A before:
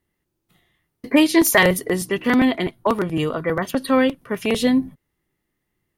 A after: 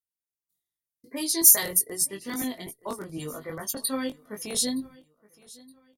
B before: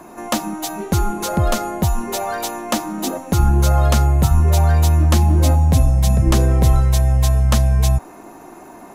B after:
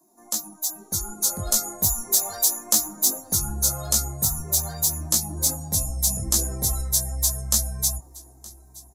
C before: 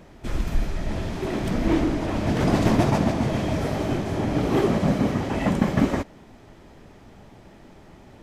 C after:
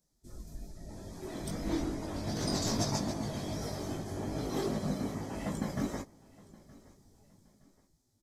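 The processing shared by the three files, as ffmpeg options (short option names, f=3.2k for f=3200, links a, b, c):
-af "flanger=delay=18.5:depth=2.6:speed=2.5,dynaudnorm=f=210:g=11:m=11dB,afftdn=nr=16:nf=-36,aecho=1:1:919|1838:0.075|0.0262,aexciter=amount=12:drive=6.8:freq=4.2k,volume=-17.5dB"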